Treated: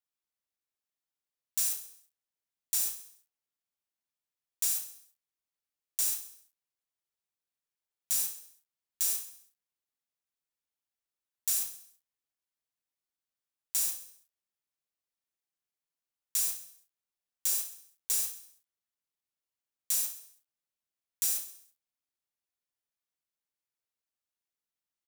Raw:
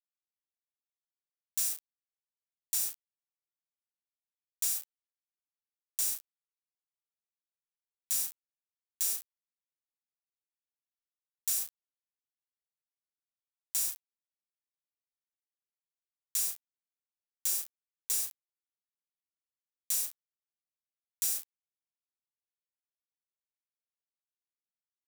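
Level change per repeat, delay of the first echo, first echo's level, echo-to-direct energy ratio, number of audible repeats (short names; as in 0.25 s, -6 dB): -6.0 dB, 66 ms, -11.5 dB, -10.0 dB, 5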